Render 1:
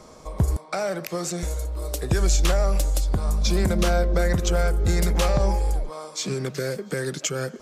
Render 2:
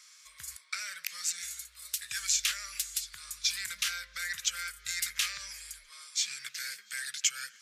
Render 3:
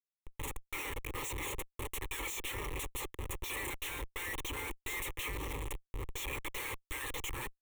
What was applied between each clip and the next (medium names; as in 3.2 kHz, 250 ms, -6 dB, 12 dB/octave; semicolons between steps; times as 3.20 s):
inverse Chebyshev high-pass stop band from 860 Hz, stop band 40 dB
reverb removal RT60 0.56 s; Schmitt trigger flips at -41 dBFS; static phaser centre 1 kHz, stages 8; trim +1.5 dB